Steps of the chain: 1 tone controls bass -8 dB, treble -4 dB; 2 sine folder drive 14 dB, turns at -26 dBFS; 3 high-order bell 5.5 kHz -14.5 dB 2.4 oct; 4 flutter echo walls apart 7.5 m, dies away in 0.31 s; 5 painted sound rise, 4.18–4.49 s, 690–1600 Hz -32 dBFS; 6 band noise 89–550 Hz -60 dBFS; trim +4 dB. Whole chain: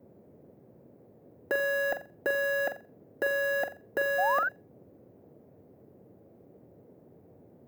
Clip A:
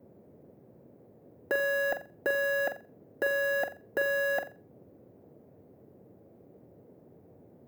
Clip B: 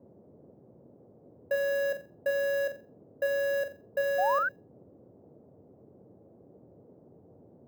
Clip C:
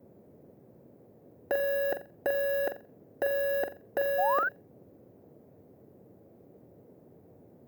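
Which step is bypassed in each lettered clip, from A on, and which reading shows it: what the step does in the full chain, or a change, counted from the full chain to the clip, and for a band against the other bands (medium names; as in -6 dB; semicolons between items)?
5, 1 kHz band -10.5 dB; 2, crest factor change -2.0 dB; 1, 2 kHz band -6.0 dB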